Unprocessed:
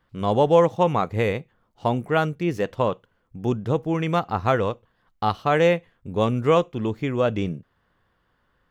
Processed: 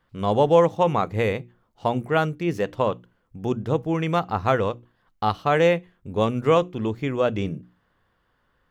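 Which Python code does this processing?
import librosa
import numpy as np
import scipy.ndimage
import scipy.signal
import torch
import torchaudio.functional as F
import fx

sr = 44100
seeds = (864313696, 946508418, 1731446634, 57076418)

y = fx.hum_notches(x, sr, base_hz=60, count=6)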